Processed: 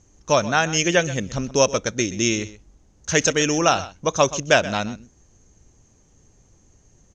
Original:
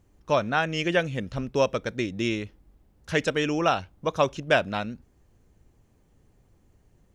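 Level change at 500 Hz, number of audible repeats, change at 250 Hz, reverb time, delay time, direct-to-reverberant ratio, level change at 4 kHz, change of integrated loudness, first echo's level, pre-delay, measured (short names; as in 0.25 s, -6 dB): +4.5 dB, 1, +4.5 dB, none, 0.126 s, none, +8.0 dB, +6.0 dB, -16.5 dB, none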